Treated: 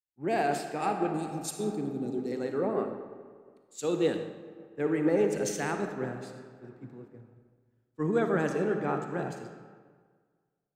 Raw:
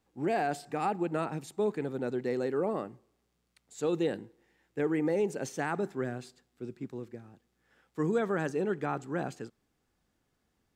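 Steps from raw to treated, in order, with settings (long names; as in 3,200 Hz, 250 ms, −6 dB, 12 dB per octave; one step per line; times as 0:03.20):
0:01.14–0:02.32: drawn EQ curve 170 Hz 0 dB, 300 Hz +5 dB, 1,000 Hz −24 dB, 5,100 Hz +5 dB
comb and all-pass reverb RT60 3.5 s, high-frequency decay 0.65×, pre-delay 15 ms, DRR 3 dB
multiband upward and downward expander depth 100%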